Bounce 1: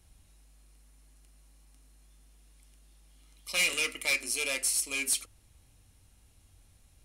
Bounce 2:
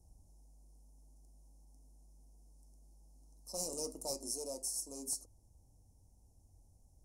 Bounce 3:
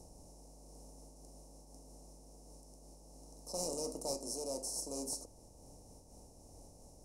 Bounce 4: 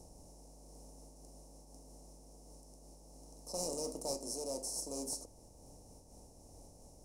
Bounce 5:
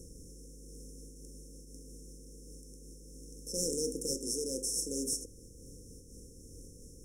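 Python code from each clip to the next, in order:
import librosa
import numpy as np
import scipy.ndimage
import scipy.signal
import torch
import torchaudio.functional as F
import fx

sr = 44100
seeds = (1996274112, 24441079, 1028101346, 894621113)

y1 = scipy.signal.sosfilt(scipy.signal.ellip(3, 1.0, 40, [860.0, 5600.0], 'bandstop', fs=sr, output='sos'), x)
y1 = fx.high_shelf(y1, sr, hz=5900.0, db=-7.5)
y1 = fx.rider(y1, sr, range_db=10, speed_s=0.5)
y1 = F.gain(torch.from_numpy(y1), -2.0).numpy()
y2 = fx.bin_compress(y1, sr, power=0.6)
y2 = fx.high_shelf(y2, sr, hz=7400.0, db=-10.0)
y2 = fx.am_noise(y2, sr, seeds[0], hz=5.7, depth_pct=55)
y2 = F.gain(torch.from_numpy(y2), 3.5).numpy()
y3 = fx.quant_float(y2, sr, bits=4)
y4 = fx.brickwall_bandstop(y3, sr, low_hz=540.0, high_hz=5200.0)
y4 = F.gain(torch.from_numpy(y4), 6.5).numpy()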